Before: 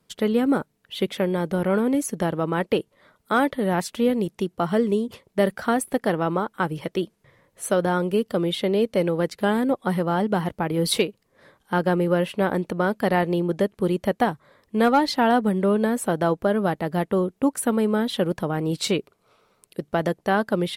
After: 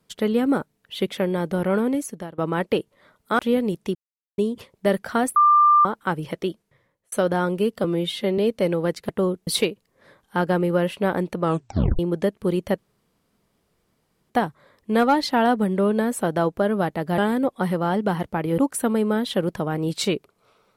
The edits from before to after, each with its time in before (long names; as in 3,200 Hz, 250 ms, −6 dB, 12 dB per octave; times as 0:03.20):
0:01.84–0:02.38: fade out, to −22 dB
0:03.39–0:03.92: remove
0:04.48–0:04.91: silence
0:05.89–0:06.38: beep over 1,190 Hz −11.5 dBFS
0:06.92–0:07.65: fade out linear
0:08.37–0:08.73: time-stretch 1.5×
0:09.44–0:10.84: swap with 0:17.03–0:17.41
0:12.79: tape stop 0.57 s
0:14.15: splice in room tone 1.52 s